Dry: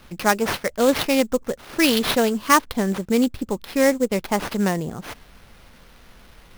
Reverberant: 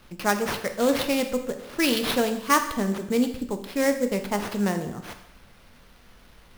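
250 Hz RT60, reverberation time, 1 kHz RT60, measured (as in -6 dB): 0.85 s, 0.80 s, 0.85 s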